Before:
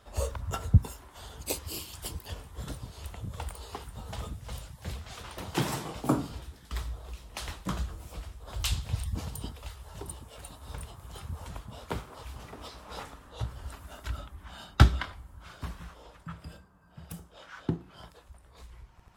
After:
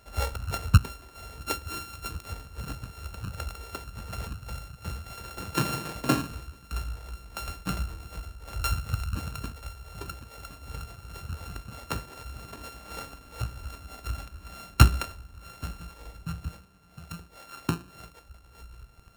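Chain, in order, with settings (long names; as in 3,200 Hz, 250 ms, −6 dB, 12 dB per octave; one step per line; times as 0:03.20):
samples sorted by size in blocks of 32 samples
0:16.00–0:16.49: low-shelf EQ 140 Hz +11.5 dB
level +2 dB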